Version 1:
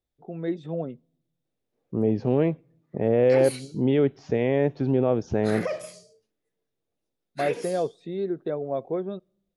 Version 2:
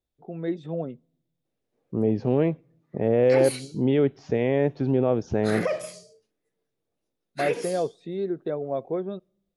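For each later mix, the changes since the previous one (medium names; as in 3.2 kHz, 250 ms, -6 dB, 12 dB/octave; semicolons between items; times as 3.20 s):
background +3.0 dB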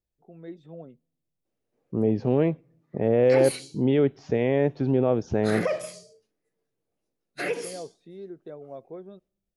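first voice -12.0 dB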